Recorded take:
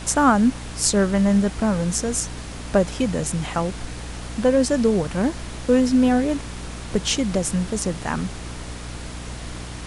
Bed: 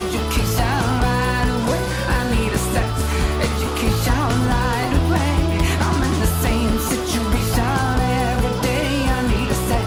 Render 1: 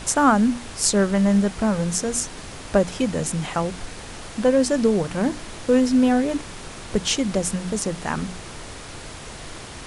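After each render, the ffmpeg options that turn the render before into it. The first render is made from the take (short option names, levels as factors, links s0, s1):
-af "bandreject=f=60:t=h:w=6,bandreject=f=120:t=h:w=6,bandreject=f=180:t=h:w=6,bandreject=f=240:t=h:w=6,bandreject=f=300:t=h:w=6"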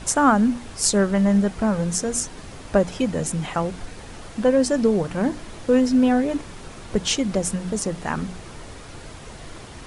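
-af "afftdn=nr=6:nf=-38"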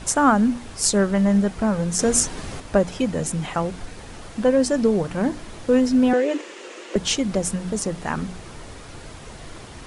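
-filter_complex "[0:a]asettb=1/sr,asplit=3[s0][s1][s2];[s0]atrim=end=6.134[s3];[s1]atrim=start=6.13:end=6.96,asetpts=PTS-STARTPTS,afade=t=in:d=0.004:c=qsin,afade=t=out:st=0.826:d=0.004:c=qsin,highpass=f=330:w=0.5412,highpass=f=330:w=1.3066,equalizer=f=340:t=q:w=4:g=9,equalizer=f=520:t=q:w=4:g=8,equalizer=f=740:t=q:w=4:g=-4,equalizer=f=1900:t=q:w=4:g=6,equalizer=f=2800:t=q:w=4:g=8,equalizer=f=6900:t=q:w=4:g=4,lowpass=f=8500:w=0.5412,lowpass=f=8500:w=1.3066[s4];[s2]atrim=start=6.956[s5];[s3][s4]acrossfade=d=0.004:c1=hsin:c2=qsin[s6];[s6][s5]acrossfade=d=0.004:c1=qsin:c2=hsin,asplit=3[s7][s8][s9];[s7]atrim=end=1.992[s10];[s8]atrim=start=1.988:end=2.602,asetpts=PTS-STARTPTS,volume=2[s11];[s9]atrim=start=2.598[s12];[s10][s11]acrossfade=d=0.004:c1=hsin:c2=hsin[s13];[s13][s12]acrossfade=d=0.004:c1=hsin:c2=hsin"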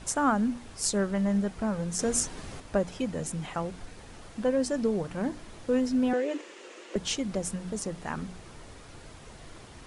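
-af "volume=0.376"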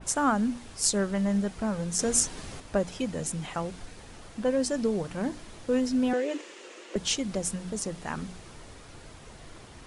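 -af "adynamicequalizer=threshold=0.00562:dfrequency=2500:dqfactor=0.7:tfrequency=2500:tqfactor=0.7:attack=5:release=100:ratio=0.375:range=2:mode=boostabove:tftype=highshelf"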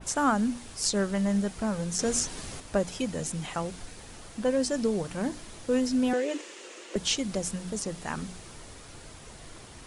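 -filter_complex "[0:a]highshelf=f=5600:g=8,acrossover=split=5600[s0][s1];[s1]acompressor=threshold=0.0178:ratio=4:attack=1:release=60[s2];[s0][s2]amix=inputs=2:normalize=0"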